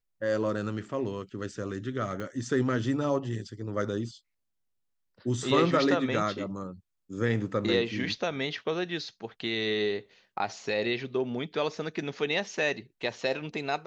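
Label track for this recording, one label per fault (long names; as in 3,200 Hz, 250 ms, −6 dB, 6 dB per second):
2.200000	2.200000	click −24 dBFS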